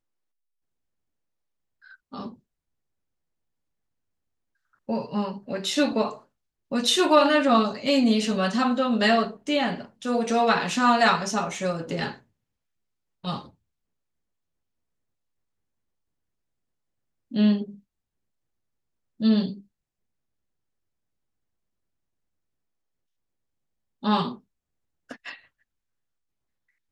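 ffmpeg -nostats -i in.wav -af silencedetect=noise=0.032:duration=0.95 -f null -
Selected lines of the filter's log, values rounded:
silence_start: 0.00
silence_end: 2.14 | silence_duration: 2.14
silence_start: 2.28
silence_end: 4.89 | silence_duration: 2.61
silence_start: 12.11
silence_end: 13.25 | silence_duration: 1.14
silence_start: 13.39
silence_end: 17.34 | silence_duration: 3.95
silence_start: 17.64
silence_end: 19.21 | silence_duration: 1.57
silence_start: 19.53
silence_end: 24.04 | silence_duration: 4.52
silence_start: 25.32
silence_end: 26.91 | silence_duration: 1.60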